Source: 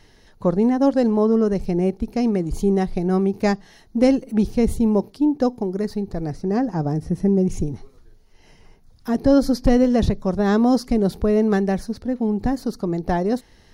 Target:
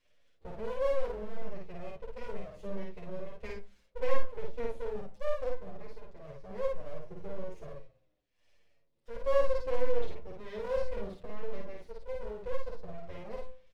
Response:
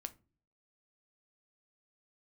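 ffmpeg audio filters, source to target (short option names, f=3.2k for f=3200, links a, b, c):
-filter_complex "[0:a]asplit=3[a][b][c];[a]bandpass=f=270:t=q:w=8,volume=0dB[d];[b]bandpass=f=2.29k:t=q:w=8,volume=-6dB[e];[c]bandpass=f=3.01k:t=q:w=8,volume=-9dB[f];[d][e][f]amix=inputs=3:normalize=0,bandreject=f=85.56:t=h:w=4,bandreject=f=171.12:t=h:w=4,bandreject=f=256.68:t=h:w=4,bandreject=f=342.24:t=h:w=4,bandreject=f=427.8:t=h:w=4,bandreject=f=513.36:t=h:w=4,bandreject=f=598.92:t=h:w=4,bandreject=f=684.48:t=h:w=4,bandreject=f=770.04:t=h:w=4,bandreject=f=855.6:t=h:w=4,bandreject=f=941.16:t=h:w=4,bandreject=f=1.02672k:t=h:w=4,bandreject=f=1.11228k:t=h:w=4,bandreject=f=1.19784k:t=h:w=4,bandreject=f=1.2834k:t=h:w=4,bandreject=f=1.36896k:t=h:w=4,bandreject=f=1.45452k:t=h:w=4,aeval=exprs='abs(val(0))':c=same,asplit=2[g][h];[1:a]atrim=start_sample=2205,adelay=52[i];[h][i]afir=irnorm=-1:irlink=0,volume=2dB[j];[g][j]amix=inputs=2:normalize=0,asplit=2[k][l];[l]adelay=8,afreqshift=-0.71[m];[k][m]amix=inputs=2:normalize=1,volume=-2.5dB"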